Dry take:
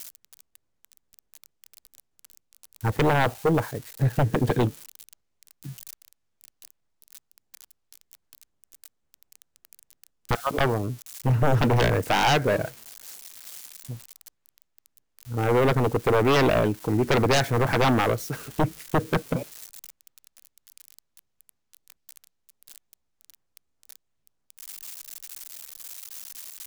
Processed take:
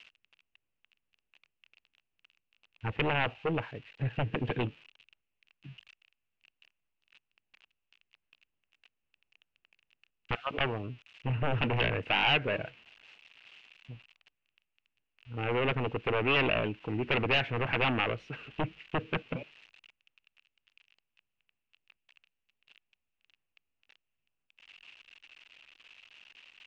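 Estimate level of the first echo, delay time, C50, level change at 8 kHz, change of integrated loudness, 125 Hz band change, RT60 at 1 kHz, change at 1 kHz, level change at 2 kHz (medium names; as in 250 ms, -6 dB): no echo, no echo, no reverb, under -30 dB, -7.0 dB, -10.0 dB, no reverb, -9.0 dB, -2.5 dB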